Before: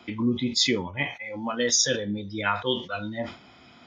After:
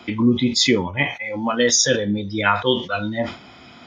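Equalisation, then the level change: dynamic bell 4.5 kHz, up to -4 dB, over -31 dBFS, Q 0.75; +8.0 dB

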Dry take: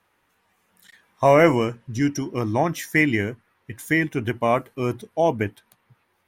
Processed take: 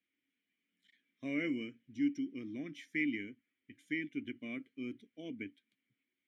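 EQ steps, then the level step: vowel filter i; low-pass 11 kHz; treble shelf 3.7 kHz +6 dB; -7.0 dB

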